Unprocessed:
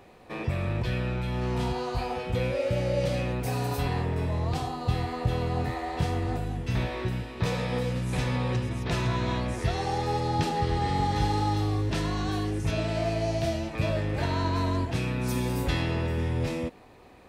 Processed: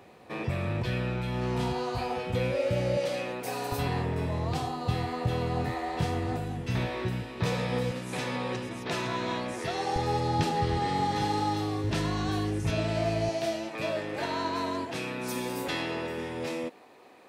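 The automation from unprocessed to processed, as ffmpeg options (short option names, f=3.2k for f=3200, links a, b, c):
-af "asetnsamples=n=441:p=0,asendcmd='2.97 highpass f 330;3.72 highpass f 97;7.91 highpass f 240;9.96 highpass f 77;10.79 highpass f 160;11.84 highpass f 69;13.29 highpass f 290',highpass=93"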